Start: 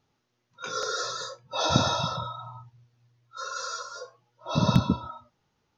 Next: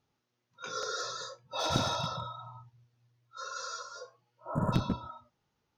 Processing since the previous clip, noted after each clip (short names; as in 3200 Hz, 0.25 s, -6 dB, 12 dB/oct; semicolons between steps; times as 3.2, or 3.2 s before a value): one-sided clip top -21.5 dBFS; spectral repair 4.21–4.71, 1800–6700 Hz before; gain -5.5 dB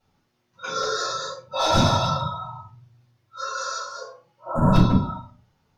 shoebox room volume 180 m³, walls furnished, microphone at 4.9 m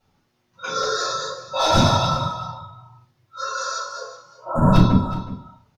echo 0.369 s -16 dB; gain +2.5 dB